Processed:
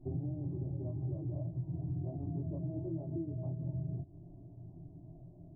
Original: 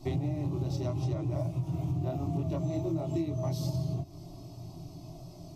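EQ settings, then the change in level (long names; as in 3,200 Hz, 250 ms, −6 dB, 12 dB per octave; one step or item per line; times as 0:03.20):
Gaussian smoothing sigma 14 samples
−5.5 dB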